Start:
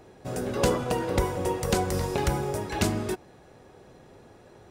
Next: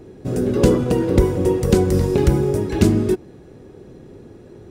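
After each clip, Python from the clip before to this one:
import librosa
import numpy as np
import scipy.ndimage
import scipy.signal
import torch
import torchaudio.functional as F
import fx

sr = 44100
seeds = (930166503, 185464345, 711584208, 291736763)

y = fx.low_shelf_res(x, sr, hz=510.0, db=9.5, q=1.5)
y = F.gain(torch.from_numpy(y), 1.5).numpy()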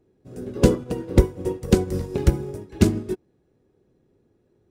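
y = fx.upward_expand(x, sr, threshold_db=-25.0, expansion=2.5)
y = F.gain(torch.from_numpy(y), 1.5).numpy()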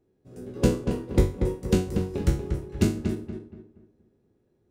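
y = fx.spec_trails(x, sr, decay_s=0.35)
y = fx.echo_filtered(y, sr, ms=236, feedback_pct=35, hz=2200.0, wet_db=-6)
y = F.gain(torch.from_numpy(y), -7.0).numpy()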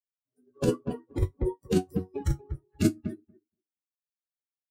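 y = fx.bin_expand(x, sr, power=3.0)
y = fx.over_compress(y, sr, threshold_db=-28.0, ratio=-1.0)
y = F.gain(torch.from_numpy(y), 6.5).numpy()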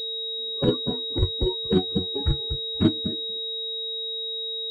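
y = x + 10.0 ** (-42.0 / 20.0) * np.sin(2.0 * np.pi * 450.0 * np.arange(len(x)) / sr)
y = fx.pwm(y, sr, carrier_hz=3800.0)
y = F.gain(torch.from_numpy(y), 3.5).numpy()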